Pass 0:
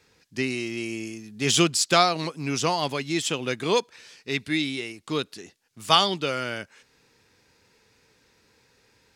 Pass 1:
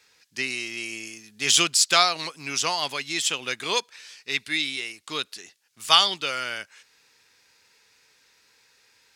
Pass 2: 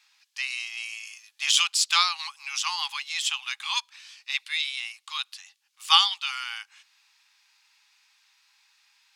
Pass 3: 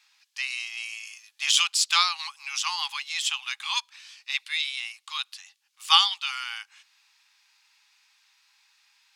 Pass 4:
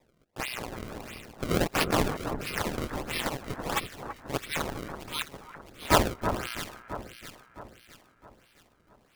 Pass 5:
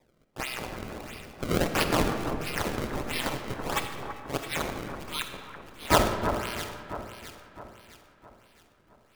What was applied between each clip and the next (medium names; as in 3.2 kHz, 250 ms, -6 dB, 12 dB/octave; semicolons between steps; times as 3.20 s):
tilt shelf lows -9 dB, about 660 Hz; trim -4.5 dB
rippled Chebyshev high-pass 790 Hz, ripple 6 dB
no audible change
ring modulator 150 Hz; decimation with a swept rate 29×, swing 160% 1.5 Hz; echo whose repeats swap between lows and highs 331 ms, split 1.6 kHz, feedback 63%, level -7.5 dB
reverberation RT60 1.9 s, pre-delay 5 ms, DRR 6.5 dB